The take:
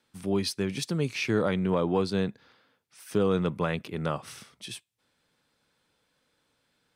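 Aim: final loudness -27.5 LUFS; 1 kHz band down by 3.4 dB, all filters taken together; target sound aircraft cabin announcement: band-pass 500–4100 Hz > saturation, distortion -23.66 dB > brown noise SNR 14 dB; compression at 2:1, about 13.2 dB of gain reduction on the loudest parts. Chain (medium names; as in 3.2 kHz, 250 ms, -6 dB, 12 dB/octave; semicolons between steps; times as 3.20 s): peaking EQ 1 kHz -4 dB; compression 2:1, threshold -46 dBFS; band-pass 500–4100 Hz; saturation -33 dBFS; brown noise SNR 14 dB; trim +20 dB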